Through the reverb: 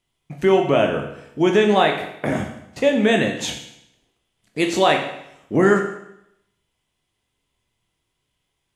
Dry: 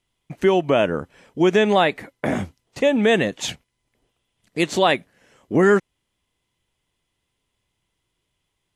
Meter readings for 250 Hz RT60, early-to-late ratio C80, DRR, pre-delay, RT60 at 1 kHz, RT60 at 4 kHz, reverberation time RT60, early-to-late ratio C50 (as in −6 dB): 0.80 s, 9.0 dB, 2.5 dB, 14 ms, 0.80 s, 0.75 s, 0.75 s, 7.0 dB